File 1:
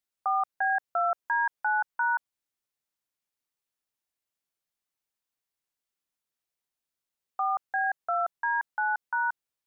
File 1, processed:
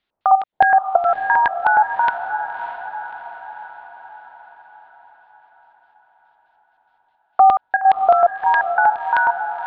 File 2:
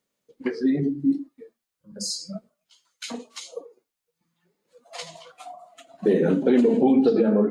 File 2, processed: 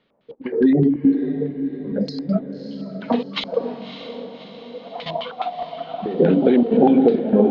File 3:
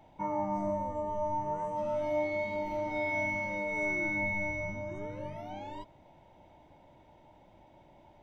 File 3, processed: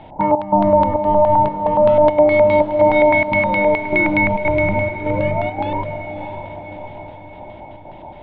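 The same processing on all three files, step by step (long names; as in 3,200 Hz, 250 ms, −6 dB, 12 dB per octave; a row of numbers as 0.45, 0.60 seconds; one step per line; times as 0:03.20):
dynamic equaliser 1,200 Hz, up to −7 dB, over −44 dBFS, Q 2.7
downward compressor 6 to 1, threshold −28 dBFS
gate pattern "xxxx..xxxxx.x" 172 BPM −12 dB
auto-filter low-pass square 4.8 Hz 800–3,600 Hz
high-frequency loss of the air 300 metres
feedback delay with all-pass diffusion 600 ms, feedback 55%, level −9.5 dB
normalise the peak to −2 dBFS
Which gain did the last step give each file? +17.0, +15.5, +19.0 decibels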